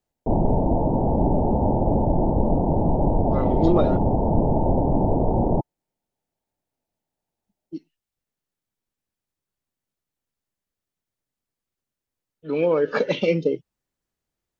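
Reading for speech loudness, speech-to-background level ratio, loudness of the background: -23.5 LUFS, -1.5 dB, -22.0 LUFS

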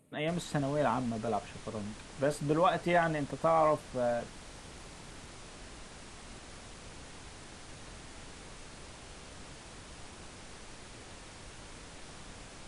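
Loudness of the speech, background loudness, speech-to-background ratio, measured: -31.5 LUFS, -49.0 LUFS, 17.5 dB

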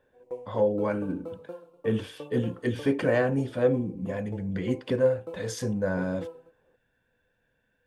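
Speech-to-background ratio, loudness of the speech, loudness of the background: 15.5 dB, -28.5 LUFS, -44.0 LUFS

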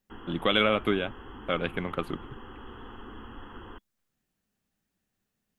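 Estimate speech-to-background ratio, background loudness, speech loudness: 17.5 dB, -46.0 LUFS, -28.5 LUFS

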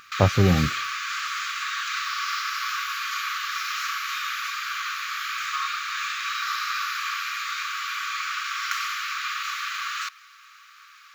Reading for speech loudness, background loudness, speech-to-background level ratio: -22.0 LUFS, -28.0 LUFS, 6.0 dB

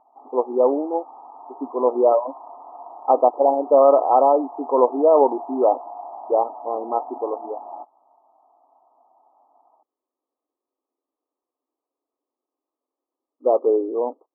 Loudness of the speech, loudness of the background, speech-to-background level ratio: -19.5 LUFS, -37.5 LUFS, 18.0 dB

